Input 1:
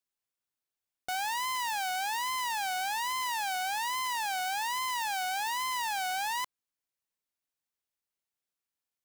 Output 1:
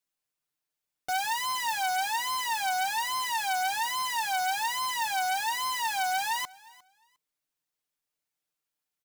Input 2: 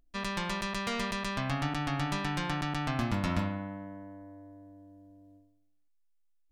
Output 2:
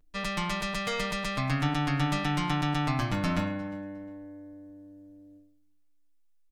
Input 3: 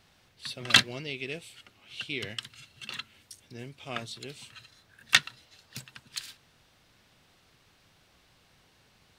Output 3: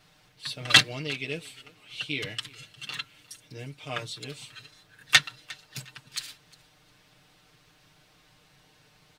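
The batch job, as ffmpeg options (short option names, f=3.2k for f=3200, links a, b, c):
-af "aecho=1:1:6.6:0.94,aecho=1:1:355|710:0.0708|0.0142"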